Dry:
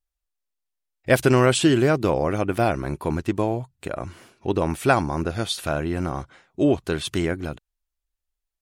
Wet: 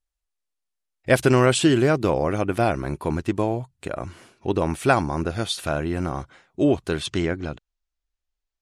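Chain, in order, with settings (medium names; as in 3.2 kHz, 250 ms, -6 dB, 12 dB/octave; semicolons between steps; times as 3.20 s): low-pass 12 kHz 24 dB/octave, from 7.06 s 7 kHz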